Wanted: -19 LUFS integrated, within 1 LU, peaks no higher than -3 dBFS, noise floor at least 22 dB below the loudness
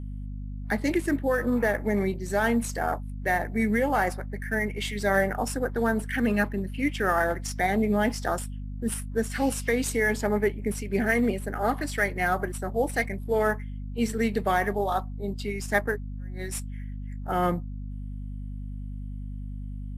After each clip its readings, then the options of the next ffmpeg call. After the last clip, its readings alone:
hum 50 Hz; harmonics up to 250 Hz; hum level -33 dBFS; loudness -27.0 LUFS; peak -10.0 dBFS; loudness target -19.0 LUFS
-> -af "bandreject=f=50:t=h:w=6,bandreject=f=100:t=h:w=6,bandreject=f=150:t=h:w=6,bandreject=f=200:t=h:w=6,bandreject=f=250:t=h:w=6"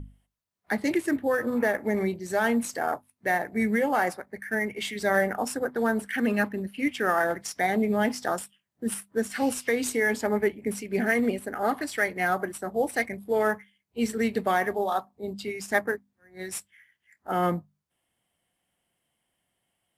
hum none; loudness -27.5 LUFS; peak -9.5 dBFS; loudness target -19.0 LUFS
-> -af "volume=8.5dB,alimiter=limit=-3dB:level=0:latency=1"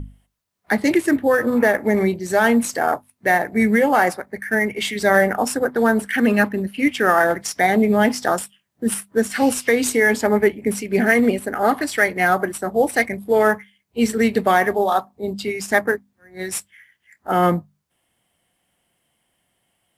loudness -19.0 LUFS; peak -3.0 dBFS; noise floor -71 dBFS

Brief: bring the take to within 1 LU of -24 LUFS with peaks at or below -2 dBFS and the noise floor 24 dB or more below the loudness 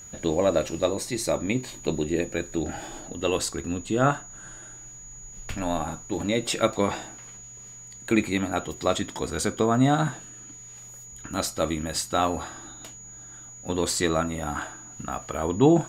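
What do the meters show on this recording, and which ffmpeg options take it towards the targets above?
steady tone 6800 Hz; tone level -42 dBFS; loudness -26.5 LUFS; peak -7.0 dBFS; loudness target -24.0 LUFS
-> -af "bandreject=f=6.8k:w=30"
-af "volume=2.5dB"

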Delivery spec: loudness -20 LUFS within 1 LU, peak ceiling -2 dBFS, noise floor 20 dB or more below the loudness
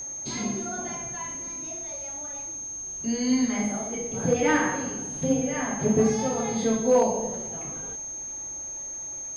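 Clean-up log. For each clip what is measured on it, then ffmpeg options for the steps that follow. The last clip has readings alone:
steady tone 6400 Hz; tone level -33 dBFS; loudness -27.0 LUFS; peak -12.0 dBFS; loudness target -20.0 LUFS
-> -af "bandreject=f=6.4k:w=30"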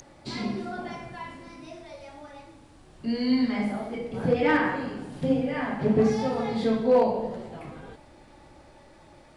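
steady tone none; loudness -26.5 LUFS; peak -13.0 dBFS; loudness target -20.0 LUFS
-> -af "volume=6.5dB"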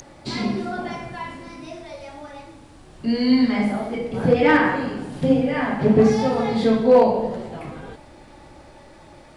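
loudness -20.0 LUFS; peak -6.5 dBFS; noise floor -47 dBFS

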